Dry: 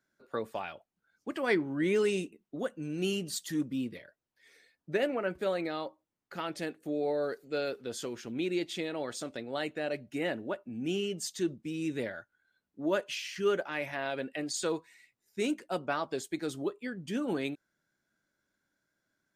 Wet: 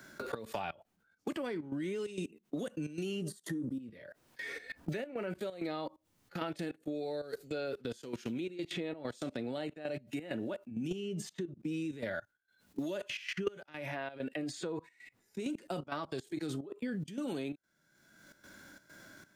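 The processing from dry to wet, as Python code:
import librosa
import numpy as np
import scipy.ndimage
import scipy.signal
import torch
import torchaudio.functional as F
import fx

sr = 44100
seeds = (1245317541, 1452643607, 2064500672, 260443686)

y = fx.low_shelf(x, sr, hz=490.0, db=10.5, at=(10.71, 11.22))
y = fx.hpss(y, sr, part='percussive', gain_db=-11)
y = fx.graphic_eq_15(y, sr, hz=(400, 2500, 10000), db=(6, -11, 10), at=(3.22, 3.8))
y = fx.level_steps(y, sr, step_db=24)
y = fx.step_gate(y, sr, bpm=131, pattern='xxx.xxxxxx.xxx.', floor_db=-12.0, edge_ms=4.5)
y = fx.band_squash(y, sr, depth_pct=100)
y = F.gain(torch.from_numpy(y), 11.0).numpy()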